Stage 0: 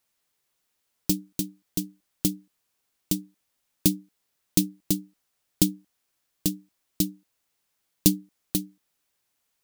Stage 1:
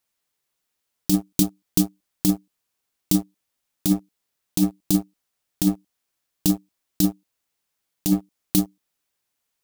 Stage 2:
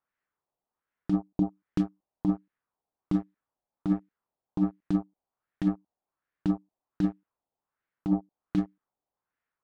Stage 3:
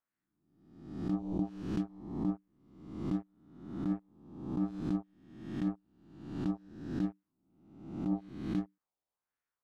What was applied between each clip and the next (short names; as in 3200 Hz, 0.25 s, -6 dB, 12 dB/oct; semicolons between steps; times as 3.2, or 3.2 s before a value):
sample leveller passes 3; negative-ratio compressor -17 dBFS, ratio -1; dynamic EQ 1600 Hz, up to -7 dB, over -49 dBFS, Q 1.5
LFO low-pass sine 1.3 Hz 740–1800 Hz; gain -6 dB
spectral swells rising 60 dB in 0.87 s; gain -8.5 dB